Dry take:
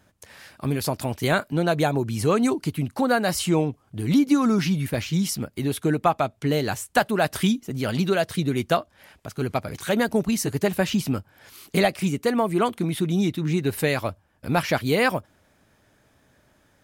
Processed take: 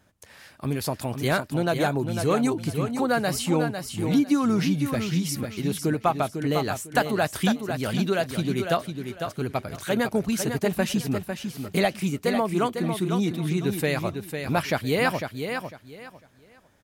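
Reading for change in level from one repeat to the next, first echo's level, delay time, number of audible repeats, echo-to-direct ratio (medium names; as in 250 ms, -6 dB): -13.0 dB, -7.0 dB, 501 ms, 3, -7.0 dB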